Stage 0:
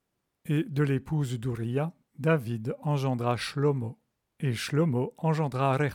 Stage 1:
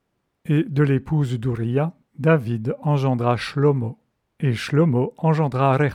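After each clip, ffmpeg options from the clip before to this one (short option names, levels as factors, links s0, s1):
-af "highshelf=f=4900:g=-11.5,volume=2.51"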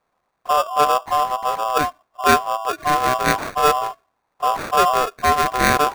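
-af "acrusher=samples=21:mix=1:aa=0.000001,aeval=exprs='val(0)*sin(2*PI*890*n/s)':c=same,volume=1.58"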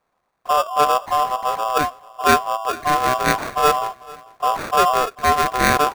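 -af "aecho=1:1:442|884:0.0794|0.0278"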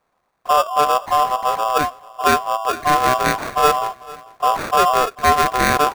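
-af "alimiter=limit=0.501:level=0:latency=1:release=253,volume=1.33"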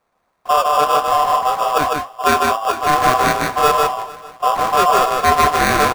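-af "flanger=delay=7.8:depth=6.9:regen=-60:speed=1.9:shape=triangular,aecho=1:1:153:0.708,volume=1.68"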